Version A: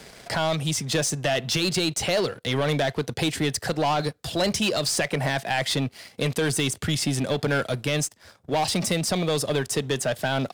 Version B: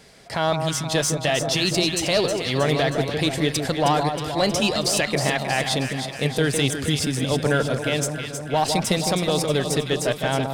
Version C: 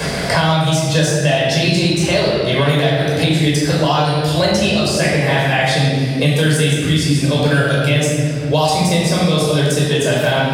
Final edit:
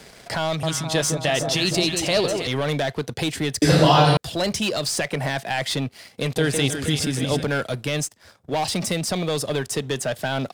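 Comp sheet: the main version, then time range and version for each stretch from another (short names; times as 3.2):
A
0.63–2.47 from B
3.62–4.17 from C
6.36–7.44 from B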